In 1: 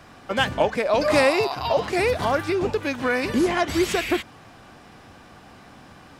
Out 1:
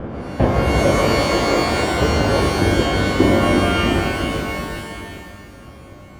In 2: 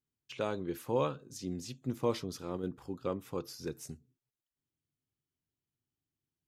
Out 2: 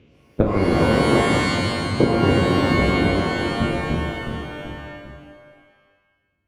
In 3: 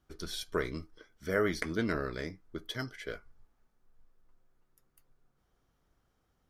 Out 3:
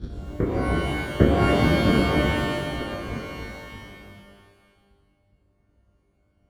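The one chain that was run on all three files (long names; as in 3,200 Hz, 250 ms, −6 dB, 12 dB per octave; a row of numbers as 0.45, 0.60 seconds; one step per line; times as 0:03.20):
spectrum averaged block by block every 400 ms
reverb reduction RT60 0.83 s
high-pass filter 54 Hz 24 dB per octave
noise gate −50 dBFS, range −7 dB
high-shelf EQ 3,600 Hz −11 dB
harmonic and percussive parts rebalanced harmonic −16 dB
spectral tilt −4.5 dB per octave
transient designer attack +8 dB, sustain +3 dB
delay with pitch and tempo change per echo 138 ms, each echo −1 semitone, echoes 3, each echo −6 dB
reverb with rising layers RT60 1.2 s, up +12 semitones, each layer −2 dB, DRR 3 dB
normalise the peak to −1.5 dBFS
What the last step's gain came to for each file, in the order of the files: +7.5, +18.0, +9.0 decibels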